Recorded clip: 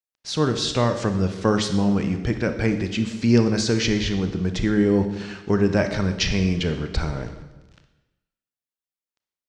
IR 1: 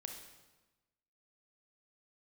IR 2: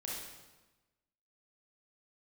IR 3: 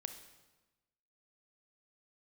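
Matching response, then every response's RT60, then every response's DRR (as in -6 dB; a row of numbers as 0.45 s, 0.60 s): 3; 1.1 s, 1.1 s, 1.1 s; 3.0 dB, -5.0 dB, 7.5 dB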